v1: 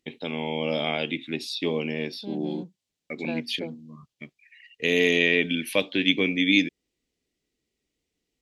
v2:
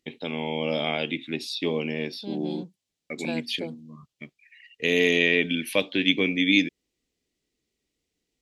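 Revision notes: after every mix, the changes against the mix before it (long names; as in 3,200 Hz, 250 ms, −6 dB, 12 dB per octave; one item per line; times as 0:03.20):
second voice: remove high-frequency loss of the air 250 metres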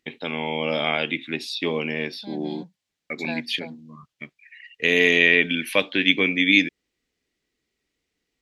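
second voice: add phaser with its sweep stopped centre 1,900 Hz, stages 8
master: add parametric band 1,500 Hz +9 dB 1.6 octaves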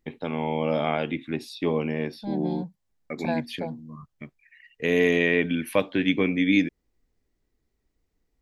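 second voice +5.5 dB
master: remove meter weighting curve D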